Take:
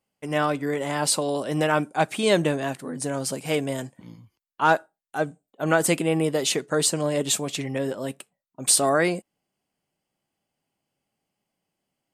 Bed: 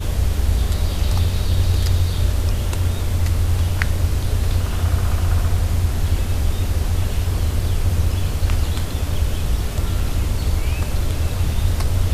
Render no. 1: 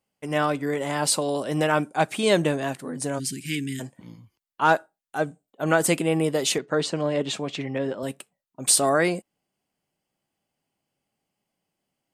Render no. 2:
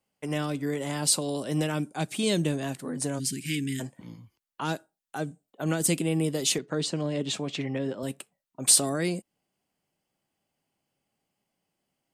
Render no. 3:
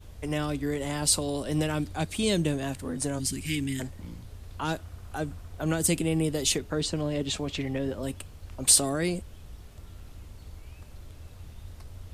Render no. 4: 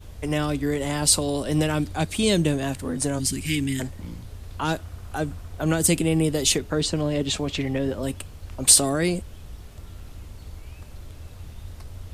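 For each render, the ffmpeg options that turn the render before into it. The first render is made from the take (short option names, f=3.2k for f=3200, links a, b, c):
-filter_complex "[0:a]asplit=3[a][b][c];[a]afade=t=out:st=3.18:d=0.02[d];[b]asuperstop=centerf=780:order=12:qfactor=0.59,afade=t=in:st=3.18:d=0.02,afade=t=out:st=3.79:d=0.02[e];[c]afade=t=in:st=3.79:d=0.02[f];[d][e][f]amix=inputs=3:normalize=0,asettb=1/sr,asplit=3[g][h][i];[g]atrim=end=6.584[j];[h]atrim=start=6.58:end=8.03,asetpts=PTS-STARTPTS,afade=t=in:d=0.004:c=qsin,afade=t=out:st=1.446:d=0.004:c=qsin,highpass=110,lowpass=3.8k[k];[i]atrim=start=8.026[l];[j][k]acrossfade=d=0.004:c1=hsin:c2=qsin[m];[m][l]acrossfade=d=0.004:c1=qsin:c2=hsin"
-filter_complex "[0:a]acrossover=split=340|3000[a][b][c];[b]acompressor=threshold=-36dB:ratio=4[d];[a][d][c]amix=inputs=3:normalize=0"
-filter_complex "[1:a]volume=-25dB[a];[0:a][a]amix=inputs=2:normalize=0"
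-af "volume=5dB,alimiter=limit=-2dB:level=0:latency=1"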